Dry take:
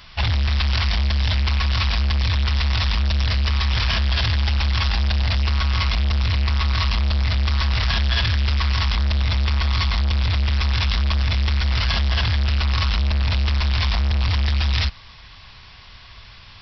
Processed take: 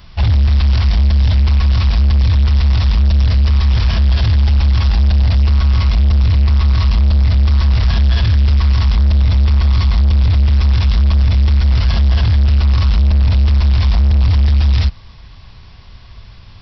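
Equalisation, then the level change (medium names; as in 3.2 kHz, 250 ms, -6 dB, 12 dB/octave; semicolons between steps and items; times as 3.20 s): tilt shelf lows +9 dB, about 890 Hz; treble shelf 4.6 kHz +11.5 dB; 0.0 dB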